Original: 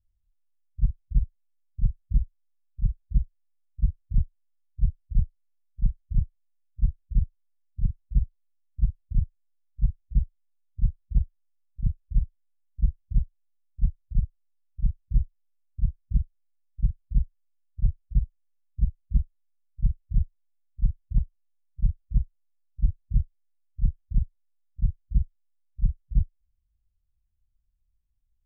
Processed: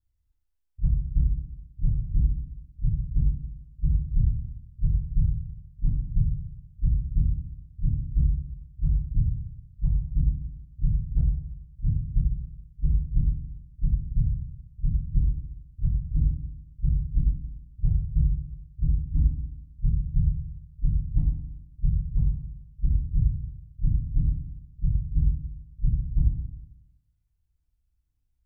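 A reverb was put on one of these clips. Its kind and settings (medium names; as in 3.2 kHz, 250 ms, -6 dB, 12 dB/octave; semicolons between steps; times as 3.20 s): FDN reverb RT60 0.76 s, low-frequency decay 1.35×, high-frequency decay 0.6×, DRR -7.5 dB; trim -6.5 dB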